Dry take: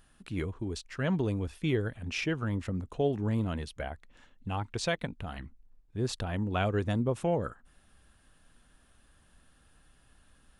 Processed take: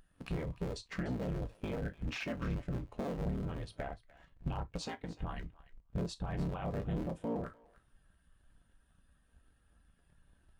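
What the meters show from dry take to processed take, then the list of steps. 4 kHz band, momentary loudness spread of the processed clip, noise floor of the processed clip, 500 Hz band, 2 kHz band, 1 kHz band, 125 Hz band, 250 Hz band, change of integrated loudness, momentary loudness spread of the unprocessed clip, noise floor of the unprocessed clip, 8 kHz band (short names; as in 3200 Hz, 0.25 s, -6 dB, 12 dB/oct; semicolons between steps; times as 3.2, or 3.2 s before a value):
-8.5 dB, 6 LU, -70 dBFS, -8.5 dB, -9.0 dB, -7.0 dB, -6.0 dB, -6.5 dB, -7.0 dB, 11 LU, -64 dBFS, -9.5 dB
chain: cycle switcher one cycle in 3, inverted; low shelf 450 Hz -3 dB; limiter -27 dBFS, peak gain reduction 10.5 dB; compressor 6:1, threshold -51 dBFS, peak gain reduction 18 dB; gate -56 dBFS, range -9 dB; thinning echo 0.297 s, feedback 18%, high-pass 830 Hz, level -11.5 dB; non-linear reverb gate 90 ms falling, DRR 8 dB; spectral expander 1.5:1; gain +12 dB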